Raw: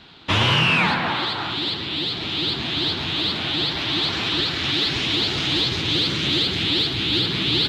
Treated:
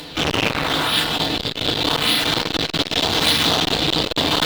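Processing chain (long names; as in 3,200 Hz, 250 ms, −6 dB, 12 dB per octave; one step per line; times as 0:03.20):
bass and treble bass +10 dB, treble +2 dB
phase-vocoder pitch shift with formants kept −6 semitones
high-pass filter 98 Hz 6 dB per octave
spectral tilt +3 dB per octave
in parallel at −3 dB: sample-and-hold swept by an LFO 29×, swing 160% 0.48 Hz
on the sum: time stretch by phase vocoder 0.58×
tuned comb filter 160 Hz, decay 0.47 s, harmonics all, mix 60%
upward compression, threshold −40 dBFS
feedback delay network reverb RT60 0.72 s, low-frequency decay 0.7×, high-frequency decay 0.65×, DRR −6 dB
saturating transformer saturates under 1,700 Hz
level +6 dB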